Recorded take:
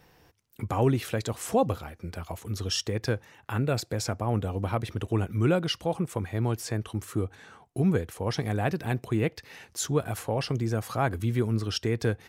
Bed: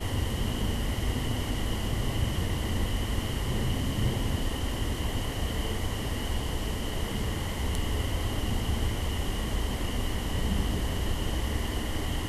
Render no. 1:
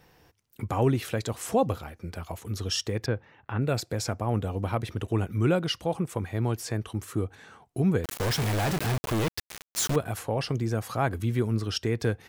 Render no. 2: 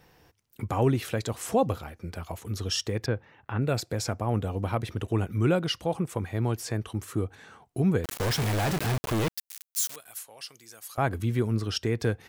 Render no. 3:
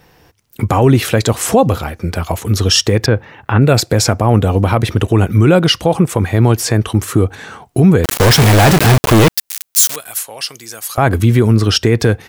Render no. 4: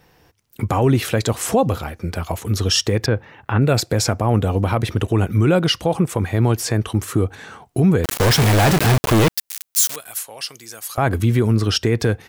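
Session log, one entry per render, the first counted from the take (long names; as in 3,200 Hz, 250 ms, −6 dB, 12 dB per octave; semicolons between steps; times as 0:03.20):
0:03.06–0:03.62: high-frequency loss of the air 290 metres; 0:08.04–0:09.96: log-companded quantiser 2 bits
0:09.34–0:10.98: first difference
automatic gain control gain up to 8.5 dB; boost into a limiter +10 dB
level −6 dB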